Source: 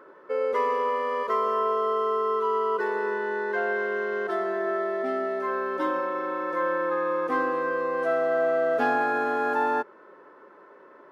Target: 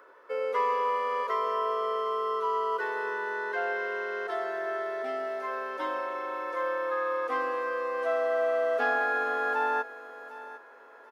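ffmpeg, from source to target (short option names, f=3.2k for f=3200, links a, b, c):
-filter_complex "[0:a]highpass=500,highshelf=f=2.8k:g=7.5,aecho=1:1:4.2:0.32,asplit=2[a][b];[b]aecho=0:1:754|1508|2262:0.15|0.0479|0.0153[c];[a][c]amix=inputs=2:normalize=0,acrossover=split=4500[d][e];[e]acompressor=threshold=-59dB:ratio=4:attack=1:release=60[f];[d][f]amix=inputs=2:normalize=0,volume=-3dB"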